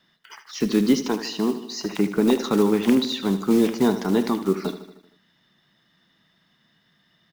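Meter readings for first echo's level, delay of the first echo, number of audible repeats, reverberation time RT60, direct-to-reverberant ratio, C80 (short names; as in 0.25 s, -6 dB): -12.0 dB, 77 ms, 5, none, none, none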